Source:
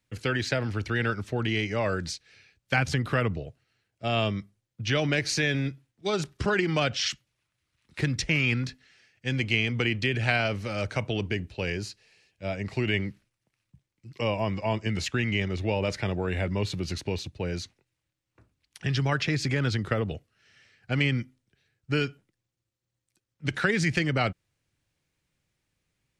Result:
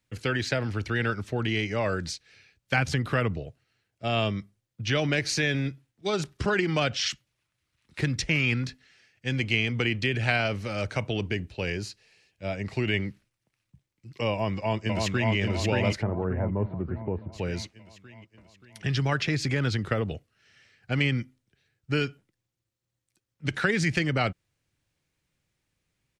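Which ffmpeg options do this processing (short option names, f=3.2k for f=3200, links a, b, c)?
-filter_complex "[0:a]asplit=2[a][b];[b]afade=t=in:st=14.31:d=0.01,afade=t=out:st=15.34:d=0.01,aecho=0:1:580|1160|1740|2320|2900|3480|4060|4640:0.794328|0.436881|0.240284|0.132156|0.072686|0.0399773|0.0219875|0.0120931[c];[a][c]amix=inputs=2:normalize=0,asplit=3[d][e][f];[d]afade=t=out:st=16.01:d=0.02[g];[e]lowpass=f=1.3k:w=0.5412,lowpass=f=1.3k:w=1.3066,afade=t=in:st=16.01:d=0.02,afade=t=out:st=17.32:d=0.02[h];[f]afade=t=in:st=17.32:d=0.02[i];[g][h][i]amix=inputs=3:normalize=0"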